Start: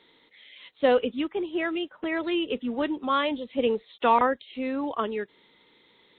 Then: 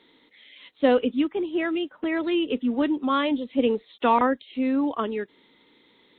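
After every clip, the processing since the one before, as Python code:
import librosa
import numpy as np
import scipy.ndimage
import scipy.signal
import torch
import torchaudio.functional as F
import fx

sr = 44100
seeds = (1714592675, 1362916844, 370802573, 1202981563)

y = fx.peak_eq(x, sr, hz=270.0, db=7.5, octaves=0.6)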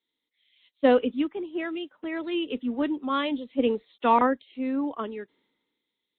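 y = fx.band_widen(x, sr, depth_pct=70)
y = F.gain(torch.from_numpy(y), -4.0).numpy()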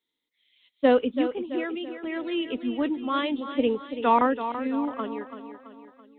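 y = fx.echo_feedback(x, sr, ms=333, feedback_pct=49, wet_db=-10.5)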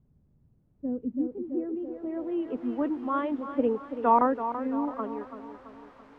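y = fx.dmg_noise_colour(x, sr, seeds[0], colour='white', level_db=-43.0)
y = fx.filter_sweep_lowpass(y, sr, from_hz=140.0, to_hz=1100.0, start_s=0.67, end_s=2.7, q=1.2)
y = F.gain(torch.from_numpy(y), -2.5).numpy()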